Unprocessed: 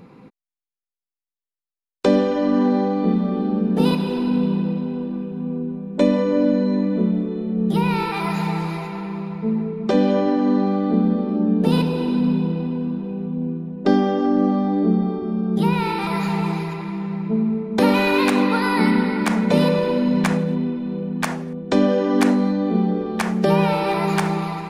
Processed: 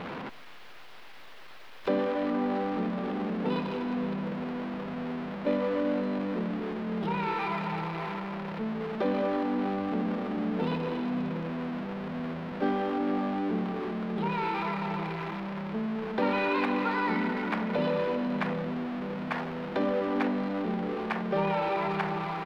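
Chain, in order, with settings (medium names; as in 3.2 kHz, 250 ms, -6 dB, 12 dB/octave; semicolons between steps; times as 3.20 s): jump at every zero crossing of -19 dBFS; bass shelf 320 Hz -12 dB; on a send: delay 187 ms -22.5 dB; on the sum: tempo 1.1×; distance through air 370 m; trim -7 dB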